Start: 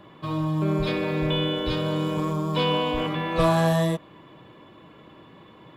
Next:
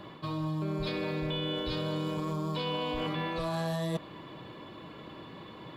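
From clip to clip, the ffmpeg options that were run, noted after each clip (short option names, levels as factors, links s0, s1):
-af "equalizer=f=4400:w=3.5:g=8.5,alimiter=limit=0.15:level=0:latency=1,areverse,acompressor=threshold=0.0224:ratio=6,areverse,volume=1.33"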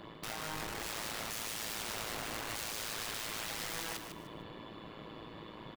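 -af "aeval=exprs='(mod(47.3*val(0)+1,2)-1)/47.3':c=same,tremolo=f=110:d=0.857,aecho=1:1:151|302|453:0.398|0.111|0.0312,volume=1.12"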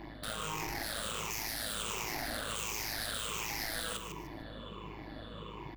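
-af "afftfilt=real='re*pow(10,13/40*sin(2*PI*(0.74*log(max(b,1)*sr/1024/100)/log(2)-(-1.4)*(pts-256)/sr)))':imag='im*pow(10,13/40*sin(2*PI*(0.74*log(max(b,1)*sr/1024/100)/log(2)-(-1.4)*(pts-256)/sr)))':win_size=1024:overlap=0.75,aeval=exprs='val(0)+0.00316*(sin(2*PI*50*n/s)+sin(2*PI*2*50*n/s)/2+sin(2*PI*3*50*n/s)/3+sin(2*PI*4*50*n/s)/4+sin(2*PI*5*50*n/s)/5)':c=same"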